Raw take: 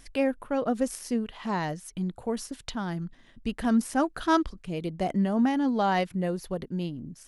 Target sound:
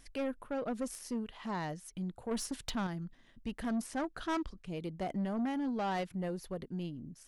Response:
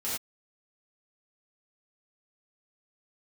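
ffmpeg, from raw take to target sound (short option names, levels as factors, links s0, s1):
-filter_complex "[0:a]asettb=1/sr,asplit=3[s0][s1][s2];[s0]atrim=end=2.314[s3];[s1]atrim=start=2.31:end=2.87,asetpts=PTS-STARTPTS,afade=t=in:d=0.004:c=qsin,afade=t=out:st=0.556:d=0.004:c=qsin,acontrast=88[s4];[s2]atrim=start=2.866[s5];[s3][s4]acrossfade=d=0.004:c1=hsin:c2=qsin[s6];[s6][s5]acrossfade=d=0.004:c1=qsin:c2=hsin,asettb=1/sr,asplit=3[s7][s8][s9];[s7]atrim=end=3.864[s10];[s8]atrim=start=3.86:end=4.66,asetpts=PTS-STARTPTS,afade=t=in:d=0.004:c=qsin,afade=t=out:st=0.796:d=0.004:c=qsin,lowpass=8900[s11];[s9]atrim=start=4.656[s12];[s10][s11]acrossfade=d=0.004:c1=hsin:c2=qsin[s13];[s13][s12]acrossfade=d=0.004:c1=qsin:c2=hsin,asoftclip=type=tanh:threshold=0.0708,volume=0.473"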